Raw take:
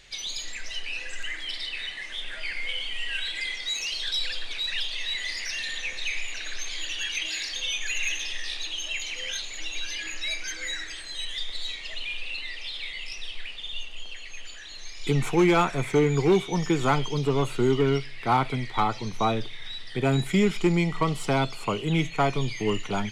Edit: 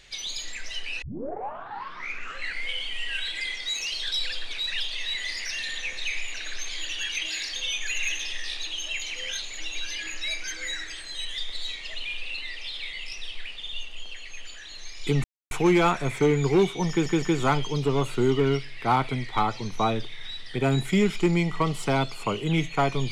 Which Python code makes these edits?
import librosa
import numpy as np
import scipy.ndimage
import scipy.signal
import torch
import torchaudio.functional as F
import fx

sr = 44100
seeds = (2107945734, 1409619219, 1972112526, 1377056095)

y = fx.edit(x, sr, fx.tape_start(start_s=1.02, length_s=1.61),
    fx.insert_silence(at_s=15.24, length_s=0.27),
    fx.stutter(start_s=16.63, slice_s=0.16, count=3), tone=tone)